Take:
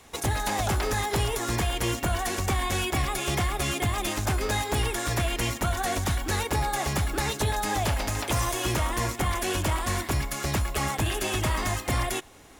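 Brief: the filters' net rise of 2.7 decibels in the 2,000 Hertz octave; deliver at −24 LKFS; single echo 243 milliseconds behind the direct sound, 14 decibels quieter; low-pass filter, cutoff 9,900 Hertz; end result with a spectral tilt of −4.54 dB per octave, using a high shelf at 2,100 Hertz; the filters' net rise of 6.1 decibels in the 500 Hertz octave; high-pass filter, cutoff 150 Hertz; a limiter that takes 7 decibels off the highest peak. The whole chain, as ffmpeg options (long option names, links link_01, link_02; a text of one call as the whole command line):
ffmpeg -i in.wav -af "highpass=150,lowpass=9900,equalizer=frequency=500:width_type=o:gain=8.5,equalizer=frequency=2000:width_type=o:gain=7.5,highshelf=frequency=2100:gain=-8.5,alimiter=limit=-18.5dB:level=0:latency=1,aecho=1:1:243:0.2,volume=4.5dB" out.wav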